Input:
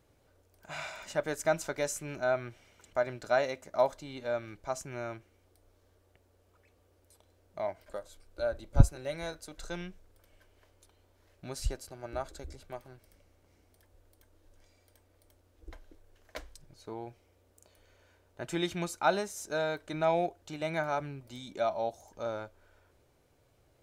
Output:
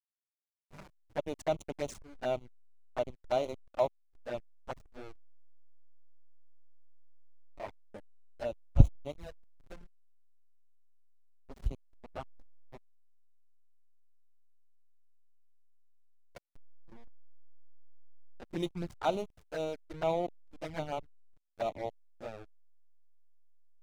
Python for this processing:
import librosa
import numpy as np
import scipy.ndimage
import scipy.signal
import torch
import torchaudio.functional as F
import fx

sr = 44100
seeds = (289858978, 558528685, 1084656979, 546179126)

y = fx.backlash(x, sr, play_db=-28.0)
y = fx.env_flanger(y, sr, rest_ms=11.4, full_db=-30.0)